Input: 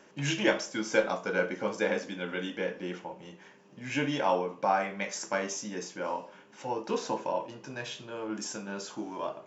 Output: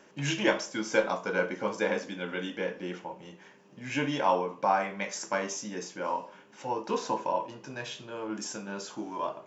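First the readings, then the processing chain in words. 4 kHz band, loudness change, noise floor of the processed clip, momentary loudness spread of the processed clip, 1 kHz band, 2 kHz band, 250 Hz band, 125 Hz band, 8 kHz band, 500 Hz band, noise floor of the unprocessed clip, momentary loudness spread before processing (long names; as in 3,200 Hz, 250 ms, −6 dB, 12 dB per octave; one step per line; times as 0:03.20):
0.0 dB, +0.5 dB, −56 dBFS, 12 LU, +2.5 dB, 0.0 dB, 0.0 dB, 0.0 dB, can't be measured, 0.0 dB, −56 dBFS, 11 LU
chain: dynamic equaliser 1,000 Hz, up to +6 dB, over −51 dBFS, Q 6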